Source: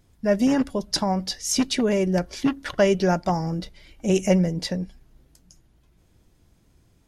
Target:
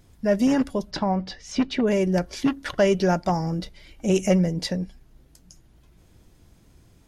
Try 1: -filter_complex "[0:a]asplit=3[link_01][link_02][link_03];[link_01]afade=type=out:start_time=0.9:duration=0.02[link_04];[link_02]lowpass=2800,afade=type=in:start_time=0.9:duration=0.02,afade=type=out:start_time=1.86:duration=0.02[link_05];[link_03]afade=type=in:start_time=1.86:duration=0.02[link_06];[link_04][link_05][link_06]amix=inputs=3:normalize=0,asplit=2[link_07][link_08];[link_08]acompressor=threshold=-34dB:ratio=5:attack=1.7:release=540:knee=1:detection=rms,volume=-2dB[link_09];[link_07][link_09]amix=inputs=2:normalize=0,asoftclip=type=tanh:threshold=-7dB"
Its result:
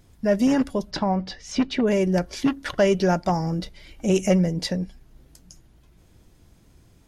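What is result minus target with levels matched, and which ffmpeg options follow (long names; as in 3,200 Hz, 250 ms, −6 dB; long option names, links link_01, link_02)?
downward compressor: peak gain reduction −9 dB
-filter_complex "[0:a]asplit=3[link_01][link_02][link_03];[link_01]afade=type=out:start_time=0.9:duration=0.02[link_04];[link_02]lowpass=2800,afade=type=in:start_time=0.9:duration=0.02,afade=type=out:start_time=1.86:duration=0.02[link_05];[link_03]afade=type=in:start_time=1.86:duration=0.02[link_06];[link_04][link_05][link_06]amix=inputs=3:normalize=0,asplit=2[link_07][link_08];[link_08]acompressor=threshold=-45.5dB:ratio=5:attack=1.7:release=540:knee=1:detection=rms,volume=-2dB[link_09];[link_07][link_09]amix=inputs=2:normalize=0,asoftclip=type=tanh:threshold=-7dB"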